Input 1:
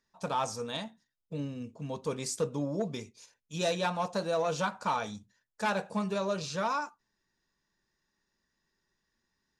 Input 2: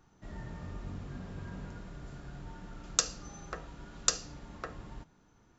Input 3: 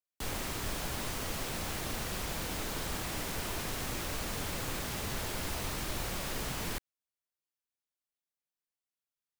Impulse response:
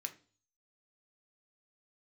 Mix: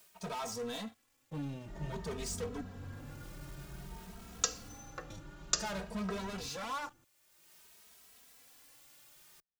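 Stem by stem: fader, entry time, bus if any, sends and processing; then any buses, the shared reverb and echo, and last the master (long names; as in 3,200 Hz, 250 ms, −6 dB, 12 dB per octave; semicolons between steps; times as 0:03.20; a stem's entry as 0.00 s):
−14.0 dB, 0.00 s, muted 0:02.61–0:05.10, no send, leveller curve on the samples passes 5
−0.5 dB, 1.45 s, no send, no processing
−16.5 dB, 0.00 s, send −17.5 dB, sign of each sample alone; automatic ducking −23 dB, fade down 0.40 s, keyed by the first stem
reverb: on, RT60 0.40 s, pre-delay 3 ms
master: barber-pole flanger 2.8 ms +0.53 Hz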